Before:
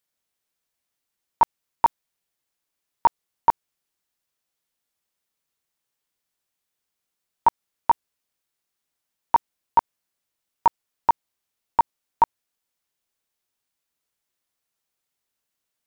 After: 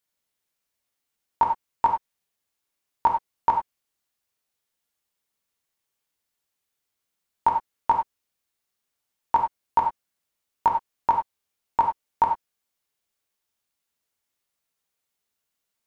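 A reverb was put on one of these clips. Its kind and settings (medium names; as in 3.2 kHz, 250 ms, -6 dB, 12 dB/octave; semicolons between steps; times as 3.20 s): gated-style reverb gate 120 ms flat, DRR 2 dB; trim -2 dB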